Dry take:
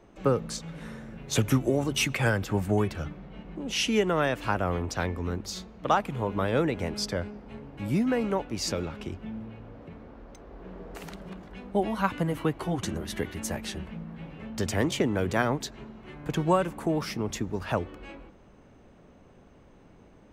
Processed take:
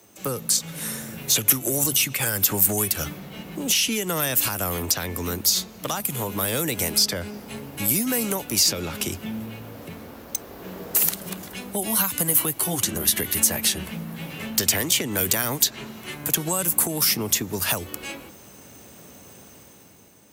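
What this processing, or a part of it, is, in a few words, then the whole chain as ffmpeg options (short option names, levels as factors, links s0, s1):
FM broadcast chain: -filter_complex "[0:a]highpass=f=73:w=0.5412,highpass=f=73:w=1.3066,dynaudnorm=f=110:g=13:m=2.51,acrossover=split=210|4500[s0][s1][s2];[s0]acompressor=threshold=0.0316:ratio=4[s3];[s1]acompressor=threshold=0.0562:ratio=4[s4];[s2]acompressor=threshold=0.00631:ratio=4[s5];[s3][s4][s5]amix=inputs=3:normalize=0,aemphasis=mode=production:type=75fm,alimiter=limit=0.15:level=0:latency=1:release=136,asoftclip=type=hard:threshold=0.112,lowpass=f=15000:w=0.5412,lowpass=f=15000:w=1.3066,aemphasis=mode=production:type=75fm,asettb=1/sr,asplit=3[s6][s7][s8];[s6]atrim=end=14.304[s9];[s7]atrim=start=14.3:end=16.16,asetpts=PTS-STARTPTS,afade=t=in:d=0.004:c=qsin,afade=t=out:st=1.856:d=0.004:c=qsin,equalizer=f=2400:w=0.56:g=3[s10];[s8]atrim=start=16.156[s11];[s9][s10]acrossfade=d=0.004:c1=hsin:c2=qsin[s12];[s12][s11]acrossfade=d=0.004:c1=qsin:c2=hsin"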